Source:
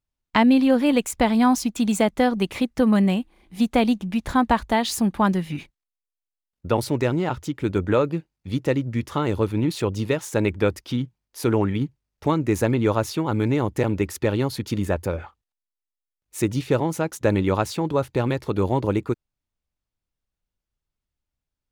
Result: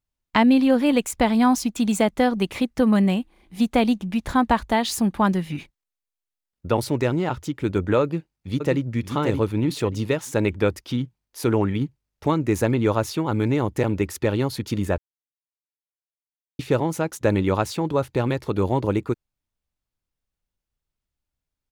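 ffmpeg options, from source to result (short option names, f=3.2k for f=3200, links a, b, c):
-filter_complex "[0:a]asplit=2[a][b];[b]afade=t=in:st=8.02:d=0.01,afade=t=out:st=8.82:d=0.01,aecho=0:1:580|1160|1740:0.501187|0.125297|0.0313242[c];[a][c]amix=inputs=2:normalize=0,asplit=3[d][e][f];[d]atrim=end=14.98,asetpts=PTS-STARTPTS,afade=t=out:st=14.976:d=0.004:c=hsin[g];[e]atrim=start=14.98:end=16.59,asetpts=PTS-STARTPTS,volume=0[h];[f]atrim=start=16.59,asetpts=PTS-STARTPTS,afade=t=in:d=0.004:c=hsin[i];[g][h][i]concat=n=3:v=0:a=1"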